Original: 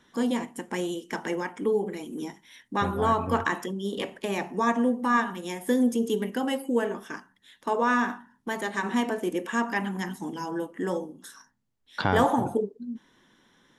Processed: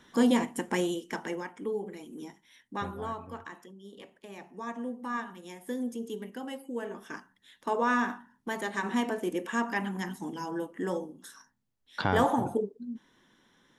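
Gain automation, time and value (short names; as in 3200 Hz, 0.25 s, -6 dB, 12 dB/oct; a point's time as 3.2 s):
0.67 s +3 dB
1.54 s -8 dB
2.79 s -8 dB
3.39 s -17.5 dB
4.2 s -17.5 dB
5.02 s -11 dB
6.76 s -11 dB
7.16 s -3 dB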